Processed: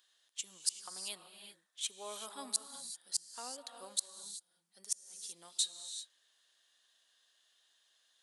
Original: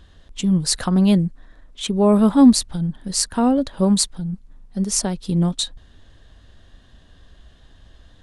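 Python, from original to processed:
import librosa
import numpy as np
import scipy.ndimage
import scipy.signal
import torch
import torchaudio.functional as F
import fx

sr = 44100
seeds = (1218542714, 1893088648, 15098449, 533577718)

y = scipy.signal.sosfilt(scipy.signal.butter(2, 430.0, 'highpass', fs=sr, output='sos'), x)
y = np.diff(y, prepend=0.0)
y = fx.gate_flip(y, sr, shuts_db=-11.0, range_db=-42)
y = fx.rev_gated(y, sr, seeds[0], gate_ms=410, shape='rising', drr_db=7.5)
y = F.gain(torch.from_numpy(y), -5.5).numpy()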